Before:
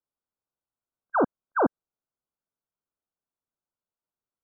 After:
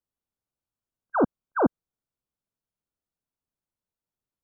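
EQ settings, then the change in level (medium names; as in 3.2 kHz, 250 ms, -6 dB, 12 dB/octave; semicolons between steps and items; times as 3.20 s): bass shelf 280 Hz +10.5 dB; -2.5 dB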